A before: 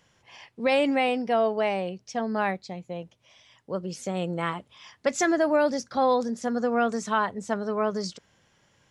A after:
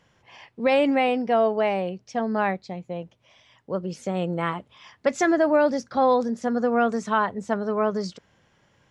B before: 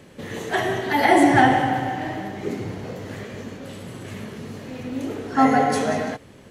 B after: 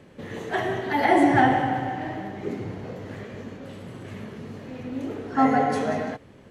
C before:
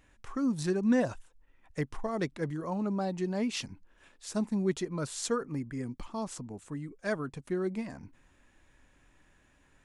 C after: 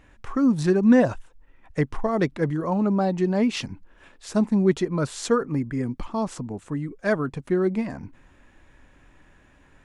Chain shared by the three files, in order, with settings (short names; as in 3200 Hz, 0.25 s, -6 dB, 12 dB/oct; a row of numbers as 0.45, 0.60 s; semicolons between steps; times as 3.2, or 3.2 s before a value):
high shelf 4200 Hz -10.5 dB; match loudness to -24 LUFS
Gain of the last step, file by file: +3.0, -2.5, +10.0 dB